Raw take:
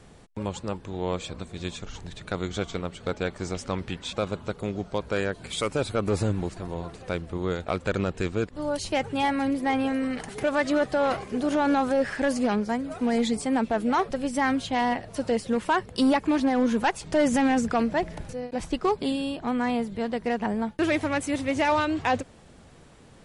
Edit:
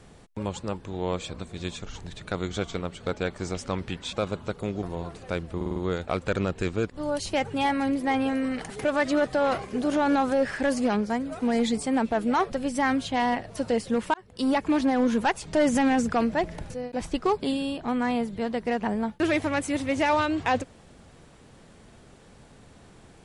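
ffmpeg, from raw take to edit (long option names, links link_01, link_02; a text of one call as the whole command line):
ffmpeg -i in.wav -filter_complex "[0:a]asplit=7[link_01][link_02][link_03][link_04][link_05][link_06][link_07];[link_01]atrim=end=4.832[link_08];[link_02]atrim=start=6.618:end=7.402[link_09];[link_03]atrim=start=7.348:end=7.402[link_10];[link_04]atrim=start=7.348:end=7.402[link_11];[link_05]atrim=start=7.348:end=7.402[link_12];[link_06]atrim=start=7.348:end=15.73,asetpts=PTS-STARTPTS,afade=type=out:start_time=8.378:duration=0.004:curve=hsin[link_13];[link_07]atrim=start=15.73,asetpts=PTS-STARTPTS,afade=type=in:duration=0.5[link_14];[link_08][link_09]acrossfade=duration=0.004:curve1=hsin:curve2=hsin[link_15];[link_15][link_10]acrossfade=duration=0.004:curve1=hsin:curve2=hsin[link_16];[link_16][link_11]acrossfade=duration=0.004:curve1=hsin:curve2=hsin[link_17];[link_17][link_12]acrossfade=duration=0.004:curve1=hsin:curve2=hsin[link_18];[link_13][link_14]concat=n=2:v=0:a=1[link_19];[link_18][link_19]acrossfade=duration=0.004:curve1=hsin:curve2=hsin" out.wav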